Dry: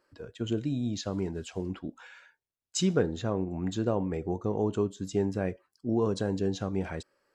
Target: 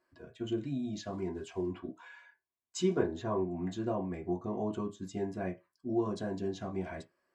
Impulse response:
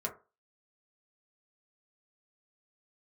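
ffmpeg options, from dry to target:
-filter_complex "[0:a]asettb=1/sr,asplit=3[s0][s1][s2];[s0]atrim=end=1.264[s3];[s1]atrim=start=1.26:end=3.44,asetpts=PTS-STARTPTS,afade=t=in:d=0.004:c=qsin,afade=t=out:st=2.176:d=0.004:c=qsin,equalizer=f=100:t=o:w=0.33:g=4,equalizer=f=160:t=o:w=0.33:g=-5,equalizer=f=400:t=o:w=0.33:g=7,equalizer=f=1000:t=o:w=0.33:g=7[s4];[s2]atrim=start=3.436[s5];[s3][s4]acrossfade=d=0.004:c1=hsin:c2=qsin[s6];[s6][s5]acrossfade=d=0.004:c1=qsin:c2=hsin[s7];[1:a]atrim=start_sample=2205,asetrate=70560,aresample=44100[s8];[s7][s8]afir=irnorm=-1:irlink=0,volume=0.668"

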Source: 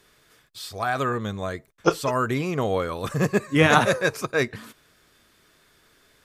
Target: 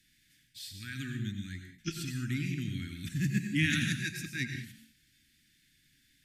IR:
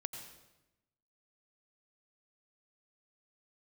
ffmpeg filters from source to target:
-filter_complex "[0:a]asuperstop=centerf=720:order=12:qfactor=0.51[s0];[1:a]atrim=start_sample=2205,afade=t=out:st=0.27:d=0.01,atrim=end_sample=12348[s1];[s0][s1]afir=irnorm=-1:irlink=0,volume=0.562"

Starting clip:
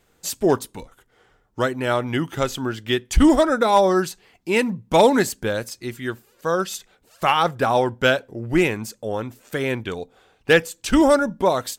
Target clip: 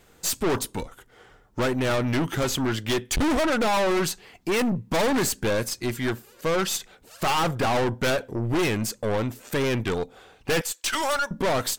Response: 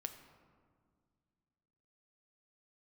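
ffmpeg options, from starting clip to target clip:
-filter_complex "[0:a]asettb=1/sr,asplit=3[s0][s1][s2];[s0]atrim=end=10.614[s3];[s1]atrim=start=10.61:end=11.31,asetpts=PTS-STARTPTS,afade=t=in:d=0.004:c=qsin,afade=t=out:st=0.696:d=0.004:c=qsin,highpass=1200[s4];[s2]atrim=start=11.306[s5];[s3][s4]acrossfade=d=0.004:c1=hsin:c2=qsin[s6];[s6][s5]acrossfade=d=0.004:c1=qsin:c2=hsin,aeval=exprs='(tanh(25.1*val(0)+0.35)-tanh(0.35))/25.1':c=same,volume=2.24"

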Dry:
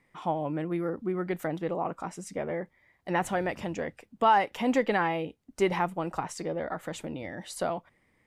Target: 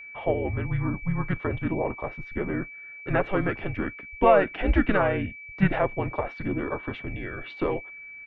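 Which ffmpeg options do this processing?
-filter_complex "[0:a]highpass=f=190:t=q:w=0.5412,highpass=f=190:t=q:w=1.307,lowpass=f=3600:t=q:w=0.5176,lowpass=f=3600:t=q:w=0.7071,lowpass=f=3600:t=q:w=1.932,afreqshift=-200,asplit=2[s0][s1];[s1]asetrate=35002,aresample=44100,atempo=1.25992,volume=0.562[s2];[s0][s2]amix=inputs=2:normalize=0,aeval=exprs='val(0)+0.00708*sin(2*PI*2300*n/s)':c=same,volume=1.41"

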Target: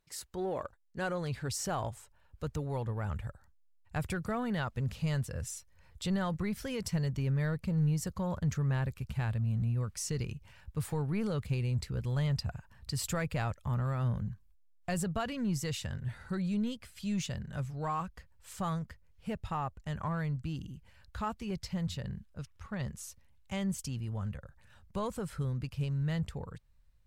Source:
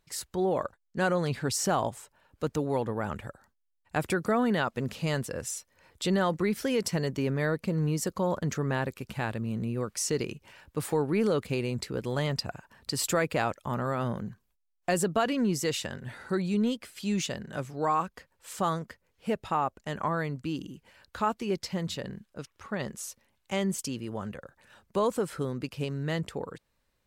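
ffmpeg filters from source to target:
-filter_complex "[0:a]asubboost=boost=12:cutoff=93,asplit=2[s0][s1];[s1]volume=22.4,asoftclip=hard,volume=0.0447,volume=0.266[s2];[s0][s2]amix=inputs=2:normalize=0,volume=0.376"

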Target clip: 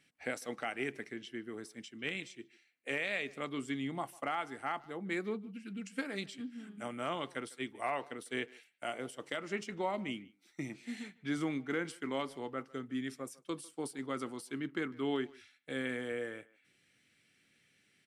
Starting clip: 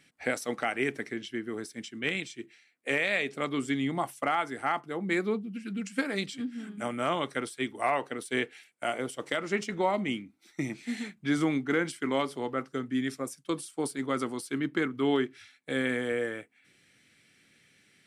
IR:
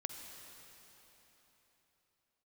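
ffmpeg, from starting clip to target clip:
-filter_complex "[0:a]equalizer=f=2800:t=o:w=0.23:g=3,asplit=2[s0][s1];[s1]adelay=150,highpass=300,lowpass=3400,asoftclip=type=hard:threshold=0.0708,volume=0.0891[s2];[s0][s2]amix=inputs=2:normalize=0,volume=0.398"

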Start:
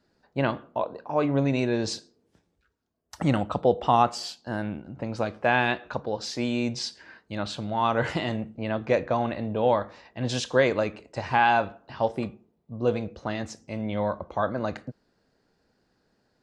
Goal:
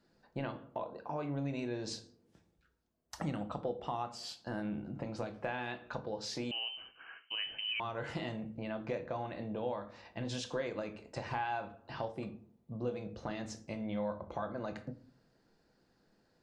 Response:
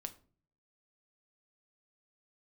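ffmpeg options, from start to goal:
-filter_complex "[0:a]acompressor=threshold=0.0178:ratio=4[s0];[1:a]atrim=start_sample=2205[s1];[s0][s1]afir=irnorm=-1:irlink=0,asettb=1/sr,asplit=3[s2][s3][s4];[s2]atrim=end=6.514[s5];[s3]atrim=start=6.51:end=7.8,asetpts=PTS-STARTPTS,afade=t=in:d=0.004:c=qsin,afade=t=out:st=1.286:d=0.004:c=qsin,lowpass=f=2700:t=q:w=0.5098,lowpass=f=2700:t=q:w=0.6013,lowpass=f=2700:t=q:w=0.9,lowpass=f=2700:t=q:w=2.563,afreqshift=-3200[s6];[s4]atrim=start=7.796[s7];[s5][s6]acrossfade=d=0.004:c1=hsin:c2=qsin[s8];[s8][s7]acrossfade=d=0.004:c1=qsin:c2=hsin,volume=1.12"

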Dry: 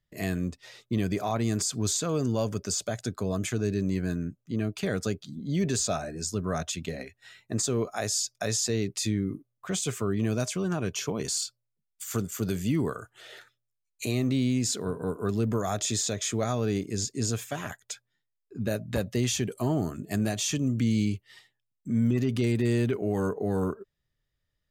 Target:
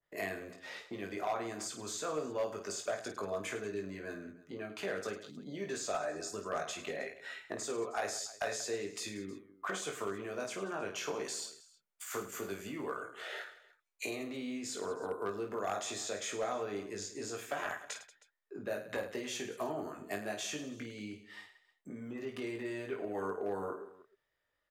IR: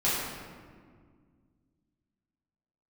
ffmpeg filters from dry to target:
-filter_complex "[0:a]acompressor=threshold=0.0112:ratio=3,acrossover=split=370 2200:gain=0.0794 1 0.224[s0][s1][s2];[s0][s1][s2]amix=inputs=3:normalize=0,aecho=1:1:20|52|103.2|185.1|316.2:0.631|0.398|0.251|0.158|0.1,volume=47.3,asoftclip=hard,volume=0.0211,adynamicequalizer=threshold=0.00158:dfrequency=1600:dqfactor=0.7:tfrequency=1600:tqfactor=0.7:attack=5:release=100:ratio=0.375:range=1.5:mode=boostabove:tftype=highshelf,volume=1.88"

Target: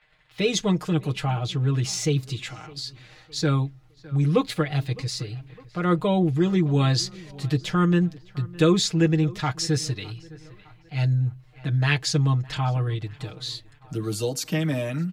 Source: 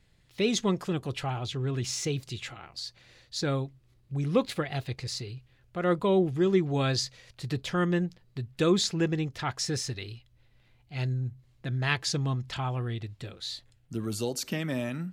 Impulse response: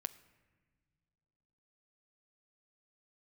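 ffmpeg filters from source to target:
-filter_complex "[0:a]aecho=1:1:6.5:0.78,asplit=2[s0][s1];[s1]adelay=610,lowpass=f=2800:p=1,volume=0.0841,asplit=2[s2][s3];[s3]adelay=610,lowpass=f=2800:p=1,volume=0.42,asplit=2[s4][s5];[s5]adelay=610,lowpass=f=2800:p=1,volume=0.42[s6];[s0][s2][s4][s6]amix=inputs=4:normalize=0,agate=range=0.0224:threshold=0.00251:ratio=3:detection=peak,lowshelf=f=160:g=4,acrossover=split=370|580|3100[s7][s8][s9][s10];[s9]acompressor=mode=upward:threshold=0.00398:ratio=2.5[s11];[s7][s8][s11][s10]amix=inputs=4:normalize=0,volume=1.26"

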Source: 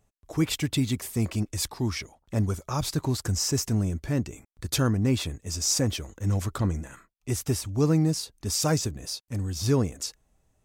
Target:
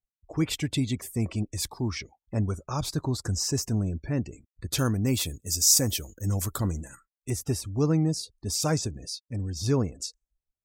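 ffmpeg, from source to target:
-filter_complex "[0:a]asettb=1/sr,asplit=3[s0][s1][s2];[s0]atrim=end=4.784[s3];[s1]atrim=start=4.78:end=7.3,asetpts=PTS-STARTPTS,afade=t=in:d=0.004:c=qsin,afade=t=out:st=2.516:d=0.004:c=qsin,aemphasis=mode=production:type=50fm[s4];[s2]atrim=start=7.296[s5];[s3][s4]acrossfade=d=0.004:c1=hsin:c2=qsin[s6];[s6][s5]acrossfade=d=0.004:c1=qsin:c2=hsin,afftdn=nr=29:nf=-45,volume=0.841"

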